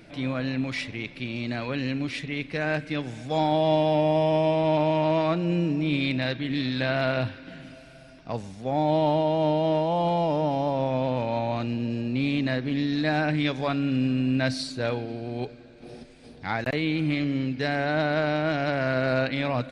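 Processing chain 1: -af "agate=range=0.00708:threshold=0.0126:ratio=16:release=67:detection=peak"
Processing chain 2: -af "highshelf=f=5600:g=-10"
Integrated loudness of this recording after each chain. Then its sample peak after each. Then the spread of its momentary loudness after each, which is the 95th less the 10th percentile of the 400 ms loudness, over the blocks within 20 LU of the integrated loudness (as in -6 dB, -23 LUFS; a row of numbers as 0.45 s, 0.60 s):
-26.0 LUFS, -26.0 LUFS; -13.0 dBFS, -13.5 dBFS; 9 LU, 10 LU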